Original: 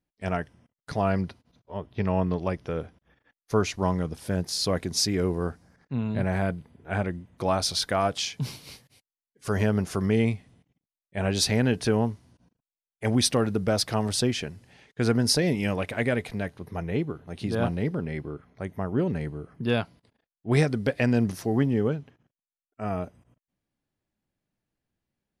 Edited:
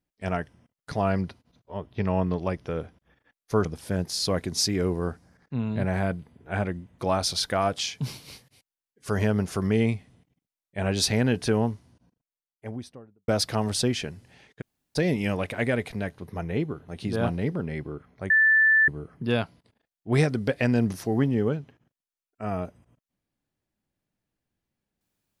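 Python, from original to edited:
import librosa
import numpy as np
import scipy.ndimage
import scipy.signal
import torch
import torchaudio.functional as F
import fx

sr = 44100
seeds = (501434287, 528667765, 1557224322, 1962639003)

y = fx.studio_fade_out(x, sr, start_s=12.1, length_s=1.57)
y = fx.edit(y, sr, fx.cut(start_s=3.65, length_s=0.39),
    fx.room_tone_fill(start_s=15.0, length_s=0.35, crossfade_s=0.02),
    fx.bleep(start_s=18.69, length_s=0.58, hz=1760.0, db=-15.5), tone=tone)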